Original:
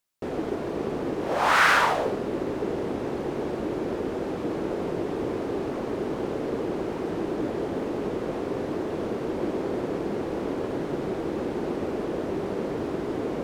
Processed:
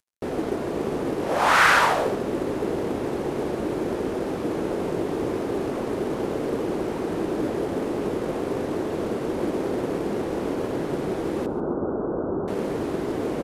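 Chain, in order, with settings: CVSD 64 kbps; 11.46–12.48 steep low-pass 1500 Hz 96 dB/oct; feedback echo 0.14 s, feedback 22%, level -16 dB; gain +2.5 dB

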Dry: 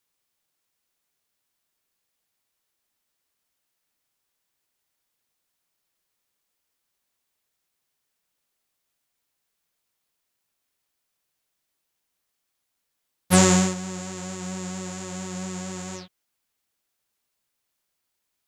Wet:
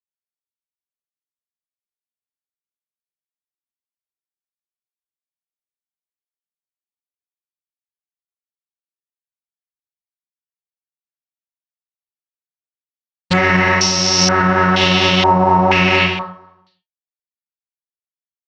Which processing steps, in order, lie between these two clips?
gate with hold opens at -27 dBFS; AGC gain up to 14.5 dB; resonator 130 Hz, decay 0.17 s, harmonics all, mix 80%; companded quantiser 4-bit; formant shift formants -4 st; air absorption 71 m; feedback echo 0.156 s, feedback 51%, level -24 dB; non-linear reverb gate 0.31 s falling, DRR -1 dB; maximiser +19 dB; stepped low-pass 2.1 Hz 900–5500 Hz; gain -4.5 dB

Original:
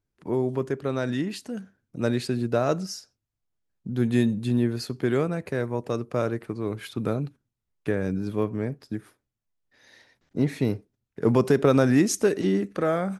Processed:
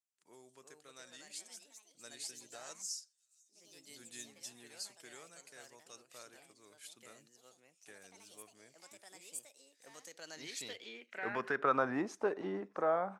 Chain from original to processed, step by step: thin delay 0.666 s, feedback 56%, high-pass 4600 Hz, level -23 dB; echoes that change speed 0.399 s, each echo +3 st, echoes 3, each echo -6 dB; band-pass sweep 7700 Hz -> 900 Hz, 10.02–12

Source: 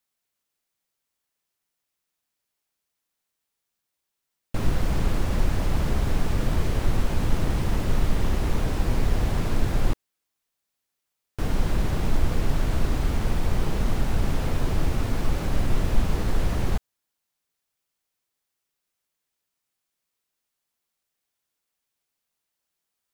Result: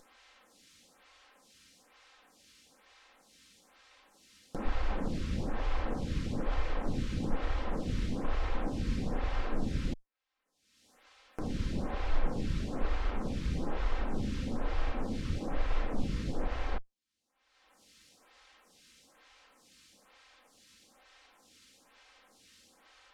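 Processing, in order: minimum comb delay 3.8 ms; LPF 5400 Hz 12 dB/oct; upward compressor, threshold -28 dBFS; photocell phaser 1.1 Hz; gain -3.5 dB

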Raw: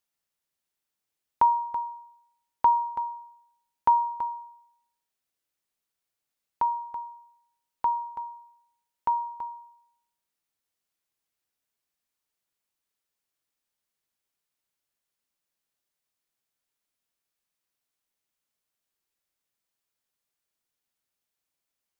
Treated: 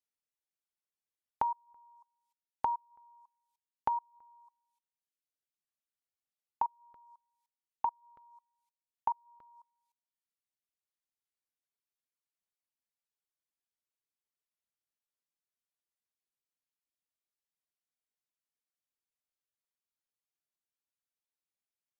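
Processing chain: level quantiser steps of 24 dB; treble ducked by the level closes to 690 Hz, closed at -29.5 dBFS; reverb removal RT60 1.3 s

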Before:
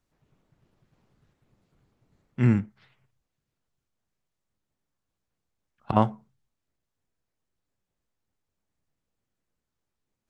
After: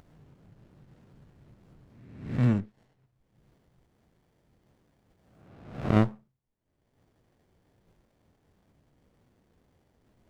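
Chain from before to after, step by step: spectral swells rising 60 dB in 0.63 s; upward compressor, threshold -39 dBFS; running maximum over 33 samples; gain -3.5 dB

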